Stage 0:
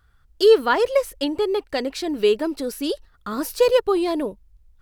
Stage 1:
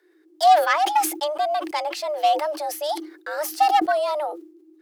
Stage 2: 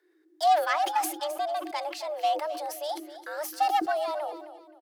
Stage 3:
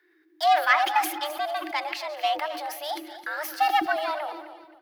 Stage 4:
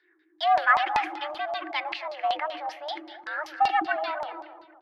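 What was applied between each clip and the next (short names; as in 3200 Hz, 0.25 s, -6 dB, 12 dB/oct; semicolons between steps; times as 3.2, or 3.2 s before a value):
self-modulated delay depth 0.091 ms; frequency shift +300 Hz; sustainer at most 100 dB/s; gain -1.5 dB
feedback echo 0.263 s, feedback 31%, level -13.5 dB; gain -7 dB
regenerating reverse delay 0.108 s, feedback 43%, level -13.5 dB; graphic EQ 500/2000/8000 Hz -11/+6/-10 dB; gain +5.5 dB
LFO low-pass saw down 5.2 Hz 840–4700 Hz; gain -4 dB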